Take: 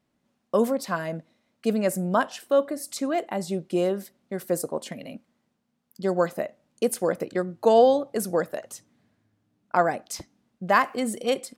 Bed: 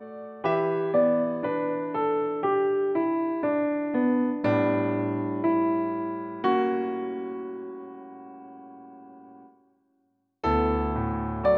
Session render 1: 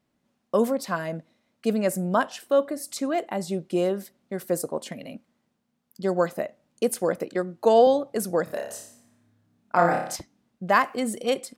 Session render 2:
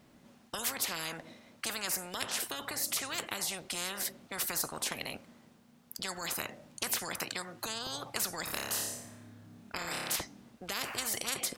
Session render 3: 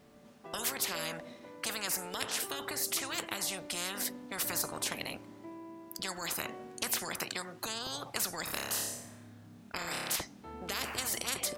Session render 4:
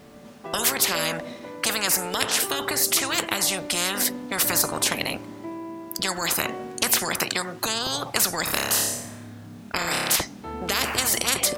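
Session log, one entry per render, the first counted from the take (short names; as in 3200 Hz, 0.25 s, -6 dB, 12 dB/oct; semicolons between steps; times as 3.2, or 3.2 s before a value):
7.19–7.87 HPF 160 Hz; 8.44–10.16 flutter echo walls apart 5 m, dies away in 0.59 s
limiter -15.5 dBFS, peak gain reduction 9.5 dB; spectral compressor 10:1
add bed -23.5 dB
gain +12 dB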